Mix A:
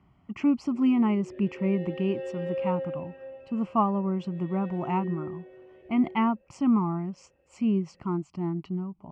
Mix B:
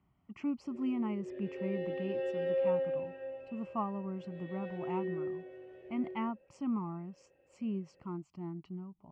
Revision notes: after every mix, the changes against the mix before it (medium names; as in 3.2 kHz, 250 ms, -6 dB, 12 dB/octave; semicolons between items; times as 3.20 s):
speech -11.5 dB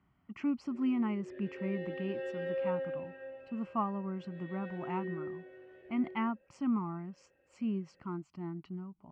background -4.5 dB; master: add fifteen-band graphic EQ 250 Hz +3 dB, 1.6 kHz +10 dB, 4 kHz +4 dB